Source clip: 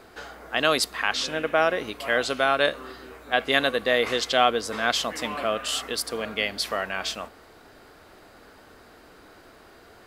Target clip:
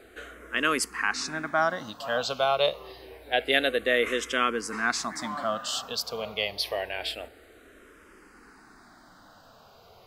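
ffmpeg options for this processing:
ffmpeg -i in.wav -filter_complex "[0:a]asplit=2[link_01][link_02];[link_02]afreqshift=-0.27[link_03];[link_01][link_03]amix=inputs=2:normalize=1" out.wav

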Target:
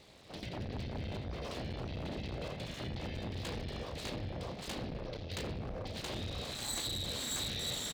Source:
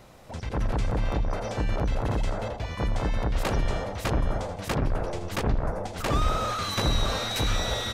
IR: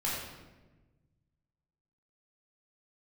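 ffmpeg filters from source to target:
-filter_complex "[0:a]acompressor=threshold=-33dB:ratio=2.5,asuperstop=centerf=1100:order=4:qfactor=0.91,asplit=2[link_01][link_02];[link_02]adelay=33,volume=-10dB[link_03];[link_01][link_03]amix=inputs=2:normalize=0,asplit=2[link_04][link_05];[1:a]atrim=start_sample=2205[link_06];[link_05][link_06]afir=irnorm=-1:irlink=0,volume=-10.5dB[link_07];[link_04][link_07]amix=inputs=2:normalize=0,volume=23.5dB,asoftclip=hard,volume=-23.5dB,highshelf=frequency=6000:width_type=q:width=3:gain=-13,aeval=exprs='abs(val(0))':channel_layout=same,highpass=41,volume=-5dB"

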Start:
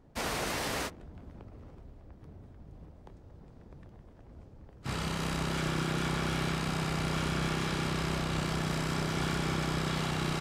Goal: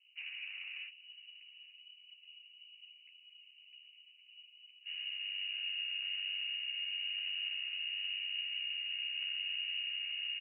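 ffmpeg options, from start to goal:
ffmpeg -i in.wav -filter_complex "[0:a]acrossover=split=830[link_01][link_02];[link_01]asplit=2[link_03][link_04];[link_04]adelay=13,volume=-3.5dB[link_05];[link_03][link_05]amix=inputs=2:normalize=0[link_06];[link_02]acrusher=bits=3:mix=0:aa=0.5[link_07];[link_06][link_07]amix=inputs=2:normalize=0,lowpass=frequency=2600:width_type=q:width=0.5098,lowpass=frequency=2600:width_type=q:width=0.6013,lowpass=frequency=2600:width_type=q:width=0.9,lowpass=frequency=2600:width_type=q:width=2.563,afreqshift=-3000,asplit=2[link_08][link_09];[link_09]adelay=852,lowpass=frequency=880:poles=1,volume=-18dB,asplit=2[link_10][link_11];[link_11]adelay=852,lowpass=frequency=880:poles=1,volume=0.43,asplit=2[link_12][link_13];[link_13]adelay=852,lowpass=frequency=880:poles=1,volume=0.43,asplit=2[link_14][link_15];[link_15]adelay=852,lowpass=frequency=880:poles=1,volume=0.43[link_16];[link_08][link_10][link_12][link_14][link_16]amix=inputs=5:normalize=0,volume=-9dB" out.wav

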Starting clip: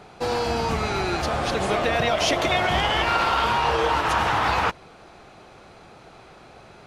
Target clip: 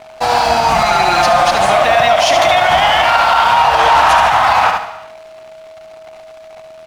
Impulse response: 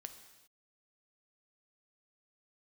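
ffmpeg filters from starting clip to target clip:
-filter_complex "[0:a]asettb=1/sr,asplit=3[link_01][link_02][link_03];[link_01]atrim=end=0.744[link_04];[link_02]atrim=start=0.74:end=1.51,asetpts=PTS-STARTPTS,afade=type=in:duration=0.004:curve=qsin,afade=type=out:start_time=0.766:duration=0.004:curve=qsin,aecho=1:1:5.7:0.76,atrim=end_sample=33957[link_05];[link_03]atrim=start=1.506[link_06];[link_04][link_05]acrossfade=duration=0.004:curve1=hsin:curve2=qsin[link_07];[link_07][link_06]acrossfade=duration=0.004:curve1=qsin:curve2=hsin,asettb=1/sr,asplit=3[link_08][link_09][link_10];[link_08]atrim=end=3.794[link_11];[link_09]atrim=start=3.79:end=4.2,asetpts=PTS-STARTPTS,afade=type=in:duration=0.004:curve=qsin,afade=type=out:start_time=0.406:duration=0.004:curve=qsin,aeval=exprs='0.299*sin(PI/2*1.58*val(0)/0.299)':channel_layout=same[link_12];[link_10]atrim=start=4.196[link_13];[link_11][link_12]acrossfade=duration=0.004:curve1=hsin:curve2=qsin[link_14];[link_14][link_13]acrossfade=duration=0.004:curve1=qsin:curve2=hsin,lowshelf=frequency=540:width_type=q:width=3:gain=-7.5,aeval=exprs='sgn(val(0))*max(abs(val(0))-0.00668,0)':channel_layout=same,aeval=exprs='val(0)+0.00355*sin(2*PI*640*n/s)':channel_layout=same,aecho=1:1:72|144|216:0.398|0.111|0.0312,asplit=2[link_15][link_16];[1:a]atrim=start_sample=2205[link_17];[link_16][link_17]afir=irnorm=-1:irlink=0,volume=4.5dB[link_18];[link_15][link_18]amix=inputs=2:normalize=0,alimiter=level_in=7.5dB:limit=-1dB:release=50:level=0:latency=1,volume=-1dB"

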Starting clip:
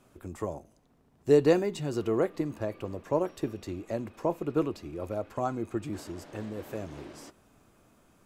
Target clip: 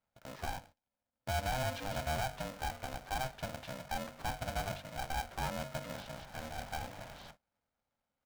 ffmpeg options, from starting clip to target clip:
ffmpeg -i in.wav -af "alimiter=limit=-22dB:level=0:latency=1:release=60,asetrate=31183,aresample=44100,atempo=1.41421,highpass=170,equalizer=frequency=220:width_type=q:width=4:gain=-9,equalizer=frequency=720:width_type=q:width=4:gain=-7,equalizer=frequency=2400:width_type=q:width=4:gain=-8,lowpass=frequency=3700:width=0.5412,lowpass=frequency=3700:width=1.3066,acrusher=bits=3:mode=log:mix=0:aa=0.000001,bandreject=frequency=50:width_type=h:width=6,bandreject=frequency=100:width_type=h:width=6,bandreject=frequency=150:width_type=h:width=6,bandreject=frequency=200:width_type=h:width=6,bandreject=frequency=250:width_type=h:width=6,bandreject=frequency=300:width_type=h:width=6,bandreject=frequency=350:width_type=h:width=6,agate=range=-22dB:threshold=-56dB:ratio=16:detection=peak,aresample=16000,asoftclip=type=tanh:threshold=-30dB,aresample=44100,aeval=exprs='val(0)*sgn(sin(2*PI*390*n/s))':channel_layout=same,volume=1.5dB" out.wav

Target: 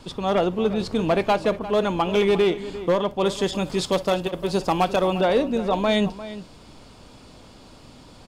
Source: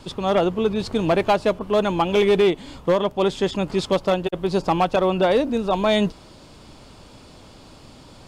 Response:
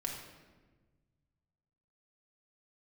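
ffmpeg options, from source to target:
-filter_complex "[0:a]asettb=1/sr,asplit=3[link_01][link_02][link_03];[link_01]atrim=end=3.254[link_04];[link_02]atrim=start=3.25:end=5.21,asetpts=PTS-STARTPTS,afade=type=in:duration=0.004:curve=qsin,afade=type=out:start_time=1.956:duration=0.004:curve=qsin,highshelf=frequency=6100:gain=11[link_05];[link_03]atrim=start=5.206[link_06];[link_04][link_05]acrossfade=duration=0.004:curve1=hsin:curve2=qsin[link_07];[link_07][link_06]acrossfade=duration=0.004:curve1=qsin:curve2=hsin,asplit=2[link_08][link_09];[link_09]adelay=349.9,volume=-14dB,highshelf=frequency=4000:gain=-7.87[link_10];[link_08][link_10]amix=inputs=2:normalize=0,asplit=2[link_11][link_12];[1:a]atrim=start_sample=2205,atrim=end_sample=3087[link_13];[link_12][link_13]afir=irnorm=-1:irlink=0,volume=-8.5dB[link_14];[link_11][link_14]amix=inputs=2:normalize=0,volume=-4dB"

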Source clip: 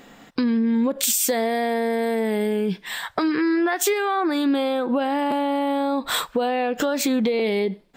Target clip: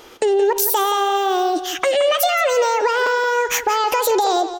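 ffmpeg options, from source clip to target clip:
ffmpeg -i in.wav -filter_complex "[0:a]asplit=2[link_01][link_02];[link_02]adelay=300,lowpass=frequency=4200:poles=1,volume=-11dB,asplit=2[link_03][link_04];[link_04]adelay=300,lowpass=frequency=4200:poles=1,volume=0.37,asplit=2[link_05][link_06];[link_06]adelay=300,lowpass=frequency=4200:poles=1,volume=0.37,asplit=2[link_07][link_08];[link_08]adelay=300,lowpass=frequency=4200:poles=1,volume=0.37[link_09];[link_01][link_03][link_05][link_07][link_09]amix=inputs=5:normalize=0,asetrate=76440,aresample=44100,volume=4dB" out.wav

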